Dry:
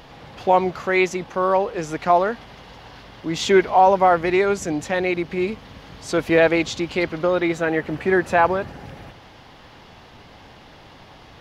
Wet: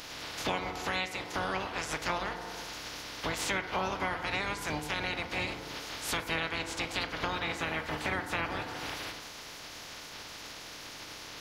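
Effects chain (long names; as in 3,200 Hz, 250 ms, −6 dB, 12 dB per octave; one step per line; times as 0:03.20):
ceiling on every frequency bin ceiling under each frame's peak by 28 dB
feedback delay network reverb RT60 0.94 s, low-frequency decay 0.85×, high-frequency decay 0.35×, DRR 7 dB
downward compressor 5 to 1, threshold −32 dBFS, peak gain reduction 20.5 dB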